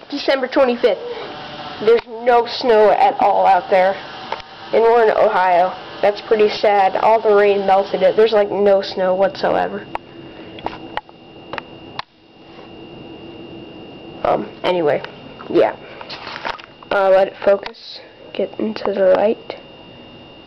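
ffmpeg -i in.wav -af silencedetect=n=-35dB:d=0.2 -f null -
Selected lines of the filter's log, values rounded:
silence_start: 12.03
silence_end: 12.36 | silence_duration: 0.33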